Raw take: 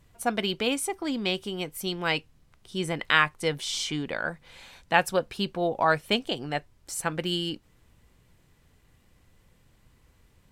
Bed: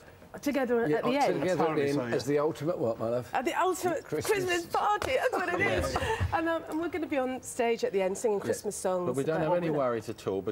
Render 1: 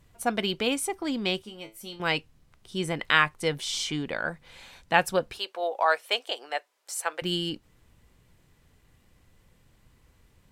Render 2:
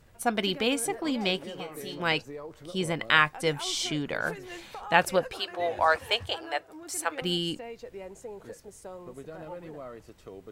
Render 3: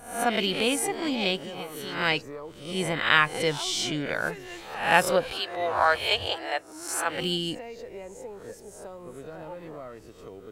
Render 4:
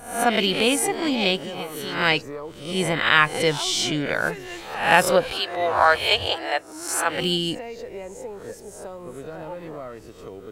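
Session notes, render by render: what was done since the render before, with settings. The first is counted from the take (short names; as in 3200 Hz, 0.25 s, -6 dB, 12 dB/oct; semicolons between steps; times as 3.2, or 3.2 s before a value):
1.42–2 resonator 110 Hz, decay 0.22 s, mix 90%; 5.38–7.22 HPF 490 Hz 24 dB/oct
add bed -13.5 dB
spectral swells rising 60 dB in 0.55 s
gain +5 dB; limiter -1 dBFS, peak gain reduction 3 dB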